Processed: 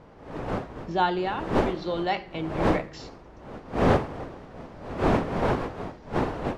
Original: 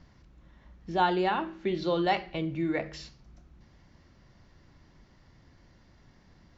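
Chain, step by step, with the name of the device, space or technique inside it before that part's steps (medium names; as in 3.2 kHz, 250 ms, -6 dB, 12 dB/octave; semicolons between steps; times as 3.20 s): smartphone video outdoors (wind noise 640 Hz -29 dBFS; level rider gain up to 14.5 dB; trim -8.5 dB; AAC 96 kbps 32 kHz)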